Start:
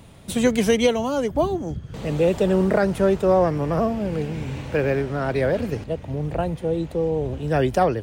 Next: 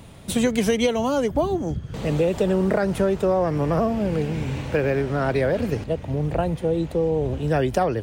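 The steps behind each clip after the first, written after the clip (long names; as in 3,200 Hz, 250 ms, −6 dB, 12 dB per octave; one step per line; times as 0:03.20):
downward compressor, threshold −19 dBFS, peak gain reduction 6.5 dB
level +2.5 dB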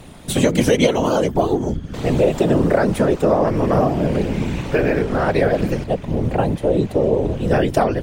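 random phases in short frames
level +4.5 dB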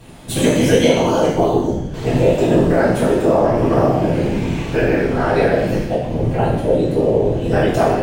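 reverb whose tail is shaped and stops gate 270 ms falling, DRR −8 dB
level −6.5 dB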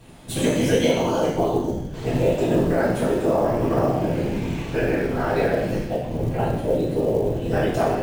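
floating-point word with a short mantissa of 4 bits
level −6 dB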